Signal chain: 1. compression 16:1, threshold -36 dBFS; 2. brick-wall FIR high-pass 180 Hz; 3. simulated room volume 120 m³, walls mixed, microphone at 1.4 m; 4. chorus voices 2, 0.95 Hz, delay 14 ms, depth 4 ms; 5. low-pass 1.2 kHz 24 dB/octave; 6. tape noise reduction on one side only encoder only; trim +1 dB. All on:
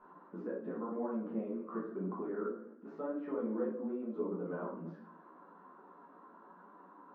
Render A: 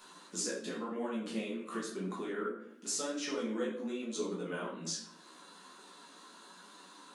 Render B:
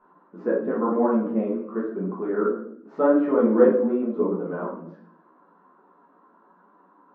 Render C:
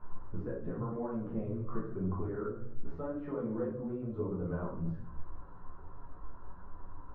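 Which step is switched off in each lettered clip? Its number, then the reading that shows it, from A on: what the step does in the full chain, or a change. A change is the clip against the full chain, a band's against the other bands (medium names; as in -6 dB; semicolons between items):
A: 5, 2 kHz band +10.5 dB; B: 1, mean gain reduction 10.0 dB; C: 2, 125 Hz band +12.0 dB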